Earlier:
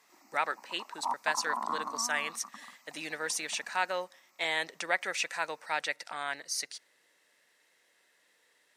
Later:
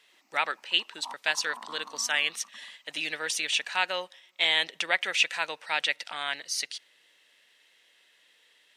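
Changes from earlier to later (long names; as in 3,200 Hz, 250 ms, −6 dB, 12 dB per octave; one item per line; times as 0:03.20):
background −10.0 dB
master: add parametric band 3,100 Hz +13.5 dB 0.86 octaves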